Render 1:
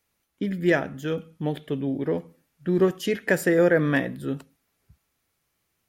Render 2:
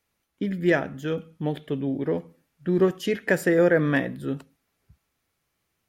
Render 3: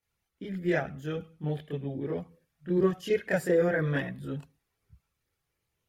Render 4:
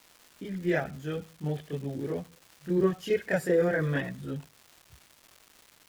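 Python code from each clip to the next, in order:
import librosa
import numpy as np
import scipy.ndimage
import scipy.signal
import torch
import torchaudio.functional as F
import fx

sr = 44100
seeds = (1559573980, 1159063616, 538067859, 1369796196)

y1 = fx.high_shelf(x, sr, hz=6100.0, db=-4.5)
y2 = fx.chorus_voices(y1, sr, voices=6, hz=0.66, base_ms=27, depth_ms=1.4, mix_pct=65)
y2 = y2 * librosa.db_to_amplitude(-3.5)
y3 = fx.dmg_crackle(y2, sr, seeds[0], per_s=550.0, level_db=-43.0)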